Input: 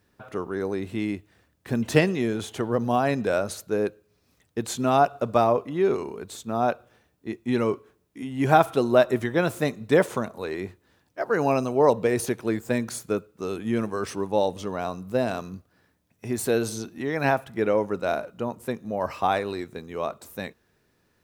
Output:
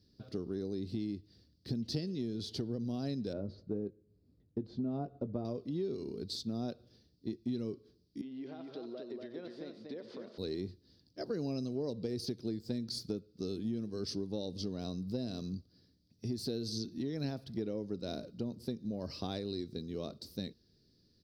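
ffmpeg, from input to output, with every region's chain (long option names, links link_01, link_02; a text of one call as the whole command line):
ffmpeg -i in.wav -filter_complex "[0:a]asettb=1/sr,asplit=3[link_01][link_02][link_03];[link_01]atrim=end=3.334[link_04];[link_02]atrim=start=3.33:end=5.45,asetpts=PTS-STARTPTS,afade=type=in:duration=0.004:curve=qsin,afade=type=out:start_time=2.116:duration=0.004:curve=qsin,lowpass=1100,asplit=2[link_05][link_06];[link_06]adelay=20,volume=-12dB[link_07];[link_05][link_07]amix=inputs=2:normalize=0,atrim=end_sample=93492[link_08];[link_03]atrim=start=5.446[link_09];[link_04][link_08]acrossfade=duration=0.004:curve1=hsin:curve2=qsin[link_10];[link_10][link_09]acrossfade=duration=0.004:curve1=qsin:curve2=hsin,asettb=1/sr,asplit=3[link_11][link_12][link_13];[link_11]atrim=end=8.214[link_14];[link_12]atrim=start=8.21:end=10.38,asetpts=PTS-STARTPTS,afade=type=in:duration=0.004:curve=qsin,afade=type=out:start_time=2.166:duration=0.004:curve=qsin,acompressor=threshold=-28dB:ratio=10:attack=3.2:release=140:knee=1:detection=peak,highpass=500,lowpass=2200,aecho=1:1:95|238:0.224|0.631,atrim=end_sample=95697[link_15];[link_13]atrim=start=10.376[link_16];[link_14][link_15]acrossfade=duration=0.004:curve1=hsin:curve2=qsin[link_17];[link_17][link_16]acrossfade=duration=0.004:curve1=qsin:curve2=hsin,firequalizer=gain_entry='entry(270,0);entry(860,-24);entry(2500,-22);entry(4700,2);entry(6900,-25)':delay=0.05:min_phase=1,acompressor=threshold=-34dB:ratio=6,highshelf=frequency=2400:gain=11.5" out.wav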